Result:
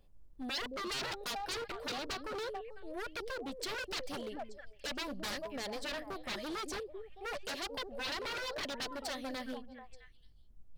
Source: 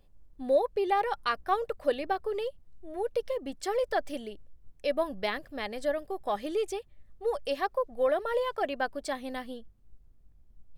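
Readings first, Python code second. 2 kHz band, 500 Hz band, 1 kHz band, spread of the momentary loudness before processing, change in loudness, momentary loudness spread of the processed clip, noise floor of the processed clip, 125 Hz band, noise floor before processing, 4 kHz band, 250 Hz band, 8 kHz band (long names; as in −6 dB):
−3.0 dB, −13.0 dB, −11.0 dB, 11 LU, −8.5 dB, 8 LU, −58 dBFS, can't be measured, −58 dBFS, +3.0 dB, −5.0 dB, +4.0 dB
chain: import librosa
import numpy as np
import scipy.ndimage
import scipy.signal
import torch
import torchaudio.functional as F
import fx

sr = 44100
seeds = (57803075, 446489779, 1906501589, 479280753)

y = fx.echo_stepped(x, sr, ms=220, hz=300.0, octaves=1.4, feedback_pct=70, wet_db=-7.5)
y = 10.0 ** (-32.0 / 20.0) * (np.abs((y / 10.0 ** (-32.0 / 20.0) + 3.0) % 4.0 - 2.0) - 1.0)
y = fx.dynamic_eq(y, sr, hz=4400.0, q=1.6, threshold_db=-56.0, ratio=4.0, max_db=7)
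y = y * 10.0 ** (-3.0 / 20.0)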